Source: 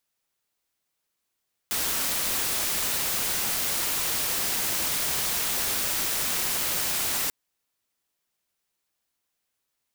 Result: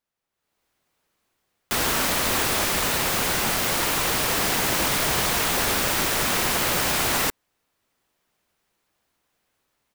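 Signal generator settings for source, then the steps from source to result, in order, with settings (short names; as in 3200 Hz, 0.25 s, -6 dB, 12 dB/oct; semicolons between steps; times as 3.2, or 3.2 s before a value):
noise white, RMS -27 dBFS 5.59 s
AGC gain up to 13.5 dB; high shelf 2900 Hz -11.5 dB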